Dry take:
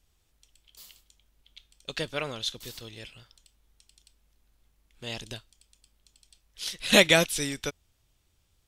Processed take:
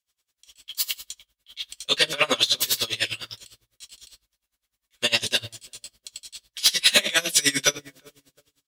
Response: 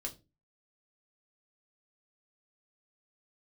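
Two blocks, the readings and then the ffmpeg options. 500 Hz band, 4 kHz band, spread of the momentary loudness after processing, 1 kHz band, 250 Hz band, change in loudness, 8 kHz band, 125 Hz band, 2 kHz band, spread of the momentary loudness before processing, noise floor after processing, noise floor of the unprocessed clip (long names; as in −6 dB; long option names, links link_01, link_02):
−2.0 dB, +9.0 dB, 22 LU, +2.5 dB, −3.5 dB, +4.5 dB, +10.0 dB, −4.0 dB, +4.0 dB, 24 LU, below −85 dBFS, −71 dBFS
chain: -filter_complex "[0:a]acompressor=threshold=-30dB:ratio=8,highpass=79,asplit=2[link_01][link_02];[link_02]adelay=356,lowpass=frequency=870:poles=1,volume=-21dB,asplit=2[link_03][link_04];[link_04]adelay=356,lowpass=frequency=870:poles=1,volume=0.42,asplit=2[link_05][link_06];[link_06]adelay=356,lowpass=frequency=870:poles=1,volume=0.42[link_07];[link_01][link_03][link_05][link_07]amix=inputs=4:normalize=0,agate=range=-33dB:threshold=-59dB:ratio=3:detection=peak,tiltshelf=frequency=750:gain=-9.5[link_08];[1:a]atrim=start_sample=2205[link_09];[link_08][link_09]afir=irnorm=-1:irlink=0,aeval=exprs='0.224*sin(PI/2*1.78*val(0)/0.224)':channel_layout=same,alimiter=level_in=17dB:limit=-1dB:release=50:level=0:latency=1,aeval=exprs='val(0)*pow(10,-24*(0.5-0.5*cos(2*PI*9.9*n/s))/20)':channel_layout=same,volume=-5.5dB"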